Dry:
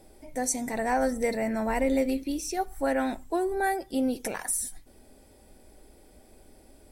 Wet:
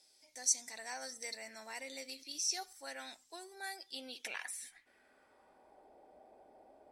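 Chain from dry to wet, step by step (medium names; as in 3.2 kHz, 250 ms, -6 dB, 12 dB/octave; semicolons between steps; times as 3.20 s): band-pass sweep 5.2 kHz -> 750 Hz, 3.69–5.91 s; 2.16–2.73 s: transient shaper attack +1 dB, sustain +6 dB; trim +4 dB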